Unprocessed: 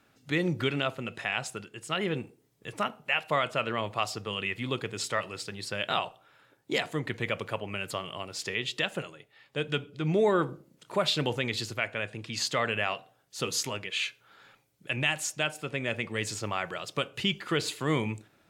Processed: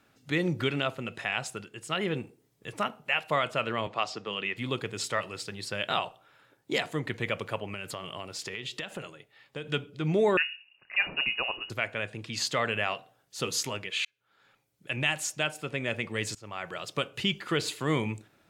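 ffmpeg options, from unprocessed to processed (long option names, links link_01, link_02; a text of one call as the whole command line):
ffmpeg -i in.wav -filter_complex "[0:a]asettb=1/sr,asplit=3[link_01][link_02][link_03];[link_01]atrim=end=3.874[link_04];[link_02]atrim=start=3.87:end=4.57,asetpts=PTS-STARTPTS,afade=type=in:duration=0.004:curve=qsin,afade=type=out:start_time=0.696:duration=0.004:curve=qsin,acrossover=split=150 6800:gain=0.0891 1 0.0708[link_05][link_06][link_07];[link_05][link_06][link_07]amix=inputs=3:normalize=0[link_08];[link_03]atrim=start=4.566[link_09];[link_04][link_08]acrossfade=duration=0.004:curve1=hsin:curve2=qsin[link_10];[link_10][link_09]acrossfade=duration=0.004:curve1=qsin:curve2=hsin,asettb=1/sr,asplit=3[link_11][link_12][link_13];[link_11]atrim=end=7.724[link_14];[link_12]atrim=start=7.72:end=9.68,asetpts=PTS-STARTPTS,afade=type=in:duration=0.004:curve=qsin,afade=type=out:start_time=1.956:duration=0.004:curve=qsin,acompressor=threshold=-32dB:ratio=6:attack=3.2:release=140:knee=1:detection=peak[link_15];[link_13]atrim=start=9.676[link_16];[link_14][link_15]acrossfade=duration=0.004:curve1=hsin:curve2=qsin[link_17];[link_17][link_16]acrossfade=duration=0.004:curve1=qsin:curve2=hsin,asettb=1/sr,asplit=3[link_18][link_19][link_20];[link_18]atrim=end=10.374[link_21];[link_19]atrim=start=10.37:end=11.7,asetpts=PTS-STARTPTS,afade=type=in:duration=0.004:curve=qsin,afade=type=out:start_time=1.326:duration=0.004:curve=qsin,lowpass=frequency=2600:width_type=q:width=0.5098,lowpass=frequency=2600:width_type=q:width=0.6013,lowpass=frequency=2600:width_type=q:width=0.9,lowpass=frequency=2600:width_type=q:width=2.563,afreqshift=-3000[link_22];[link_20]atrim=start=11.696[link_23];[link_21][link_22]acrossfade=duration=0.004:curve1=hsin:curve2=qsin[link_24];[link_24][link_23]acrossfade=duration=0.004:curve1=qsin:curve2=hsin,asplit=3[link_25][link_26][link_27];[link_25]atrim=end=14.05,asetpts=PTS-STARTPTS,afade=type=out:start_time=14.046:duration=0.004:curve=hsin[link_28];[link_26]atrim=start=14.05:end=16.35,asetpts=PTS-STARTPTS,afade=type=in:duration=1.02,afade=type=out:start_time=2.296:duration=0.004:curve=hsin:silence=0.0668344[link_29];[link_27]atrim=start=16.35,asetpts=PTS-STARTPTS,afade=type=in:duration=0.47:silence=0.0668344[link_30];[link_28][link_29][link_30]concat=n=3:v=0:a=1" out.wav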